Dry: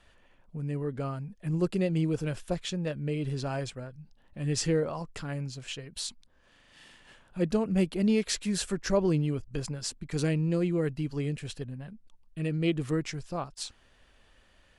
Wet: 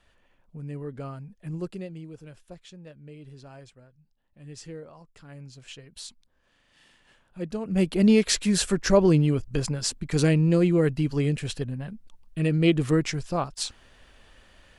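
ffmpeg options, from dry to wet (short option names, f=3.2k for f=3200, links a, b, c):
-af "volume=17.5dB,afade=t=out:st=1.43:d=0.57:silence=0.298538,afade=t=in:st=5.16:d=0.53:silence=0.375837,afade=t=in:st=7.6:d=0.4:silence=0.251189"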